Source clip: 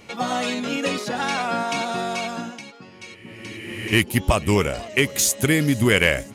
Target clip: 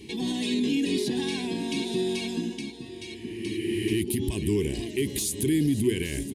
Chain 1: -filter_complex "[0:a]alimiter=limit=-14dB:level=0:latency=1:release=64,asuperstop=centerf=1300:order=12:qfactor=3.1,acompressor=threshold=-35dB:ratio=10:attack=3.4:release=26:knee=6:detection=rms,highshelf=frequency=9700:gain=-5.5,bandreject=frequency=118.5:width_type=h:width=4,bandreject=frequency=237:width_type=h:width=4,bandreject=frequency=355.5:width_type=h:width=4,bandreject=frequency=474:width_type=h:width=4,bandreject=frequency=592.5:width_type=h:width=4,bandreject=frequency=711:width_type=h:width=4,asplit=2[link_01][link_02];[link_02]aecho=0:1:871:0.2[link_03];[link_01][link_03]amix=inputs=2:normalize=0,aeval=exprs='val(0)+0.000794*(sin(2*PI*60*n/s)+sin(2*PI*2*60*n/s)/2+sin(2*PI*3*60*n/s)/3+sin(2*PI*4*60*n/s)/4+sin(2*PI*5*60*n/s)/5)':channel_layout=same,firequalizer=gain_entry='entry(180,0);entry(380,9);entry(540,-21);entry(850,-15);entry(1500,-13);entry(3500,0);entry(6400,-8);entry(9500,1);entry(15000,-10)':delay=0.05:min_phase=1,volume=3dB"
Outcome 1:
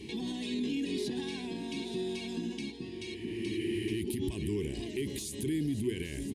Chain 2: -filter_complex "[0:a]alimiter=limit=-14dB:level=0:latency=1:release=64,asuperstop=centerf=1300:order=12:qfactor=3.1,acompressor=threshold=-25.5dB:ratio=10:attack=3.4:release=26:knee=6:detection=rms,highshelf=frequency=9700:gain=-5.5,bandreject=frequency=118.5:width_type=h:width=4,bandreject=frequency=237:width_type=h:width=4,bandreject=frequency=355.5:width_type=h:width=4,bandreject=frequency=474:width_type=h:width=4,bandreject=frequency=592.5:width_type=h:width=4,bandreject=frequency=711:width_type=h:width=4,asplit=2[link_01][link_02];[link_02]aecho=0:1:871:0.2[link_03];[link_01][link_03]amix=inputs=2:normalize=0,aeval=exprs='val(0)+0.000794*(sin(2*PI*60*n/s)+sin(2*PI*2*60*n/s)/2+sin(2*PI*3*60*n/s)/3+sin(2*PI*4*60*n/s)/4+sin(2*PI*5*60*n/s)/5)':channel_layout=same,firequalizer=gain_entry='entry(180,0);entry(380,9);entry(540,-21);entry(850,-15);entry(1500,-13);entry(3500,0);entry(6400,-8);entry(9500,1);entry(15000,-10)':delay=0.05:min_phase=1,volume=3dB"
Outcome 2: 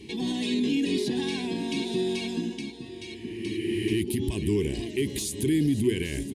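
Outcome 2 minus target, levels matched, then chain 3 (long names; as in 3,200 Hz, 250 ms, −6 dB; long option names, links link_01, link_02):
8,000 Hz band −3.0 dB
-filter_complex "[0:a]alimiter=limit=-14dB:level=0:latency=1:release=64,asuperstop=centerf=1300:order=12:qfactor=3.1,acompressor=threshold=-25.5dB:ratio=10:attack=3.4:release=26:knee=6:detection=rms,highshelf=frequency=9700:gain=3,bandreject=frequency=118.5:width_type=h:width=4,bandreject=frequency=237:width_type=h:width=4,bandreject=frequency=355.5:width_type=h:width=4,bandreject=frequency=474:width_type=h:width=4,bandreject=frequency=592.5:width_type=h:width=4,bandreject=frequency=711:width_type=h:width=4,asplit=2[link_01][link_02];[link_02]aecho=0:1:871:0.2[link_03];[link_01][link_03]amix=inputs=2:normalize=0,aeval=exprs='val(0)+0.000794*(sin(2*PI*60*n/s)+sin(2*PI*2*60*n/s)/2+sin(2*PI*3*60*n/s)/3+sin(2*PI*4*60*n/s)/4+sin(2*PI*5*60*n/s)/5)':channel_layout=same,firequalizer=gain_entry='entry(180,0);entry(380,9);entry(540,-21);entry(850,-15);entry(1500,-13);entry(3500,0);entry(6400,-8);entry(9500,1);entry(15000,-10)':delay=0.05:min_phase=1,volume=3dB"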